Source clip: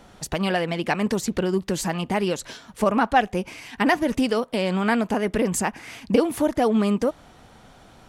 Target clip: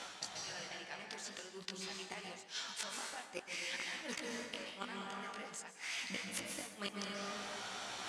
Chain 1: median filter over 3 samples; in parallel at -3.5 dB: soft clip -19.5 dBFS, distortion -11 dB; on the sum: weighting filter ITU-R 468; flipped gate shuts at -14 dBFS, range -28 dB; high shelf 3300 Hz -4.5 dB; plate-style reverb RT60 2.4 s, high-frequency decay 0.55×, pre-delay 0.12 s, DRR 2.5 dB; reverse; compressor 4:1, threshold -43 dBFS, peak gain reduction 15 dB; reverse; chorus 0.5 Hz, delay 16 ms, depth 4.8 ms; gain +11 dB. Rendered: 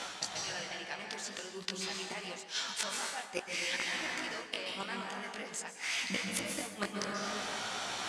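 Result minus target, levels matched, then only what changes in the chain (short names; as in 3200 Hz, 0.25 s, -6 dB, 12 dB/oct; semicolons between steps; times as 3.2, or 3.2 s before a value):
compressor: peak gain reduction -7 dB; soft clip: distortion -7 dB
change: soft clip -31 dBFS, distortion -4 dB; change: compressor 4:1, threshold -52 dBFS, peak gain reduction 22 dB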